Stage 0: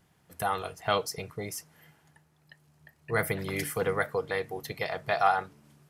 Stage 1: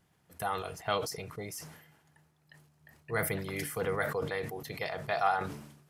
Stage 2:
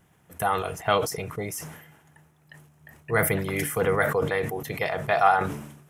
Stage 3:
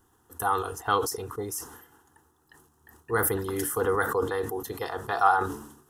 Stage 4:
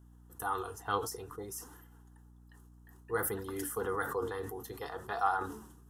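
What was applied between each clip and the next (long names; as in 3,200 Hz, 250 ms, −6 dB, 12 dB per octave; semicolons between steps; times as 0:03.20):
level that may fall only so fast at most 67 dB per second; level −4.5 dB
parametric band 4,500 Hz −10.5 dB 0.49 octaves; level +9 dB
phaser with its sweep stopped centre 610 Hz, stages 6; level +1.5 dB
flanger 0.56 Hz, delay 2.8 ms, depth 7.6 ms, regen +57%; mains hum 60 Hz, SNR 19 dB; level −4.5 dB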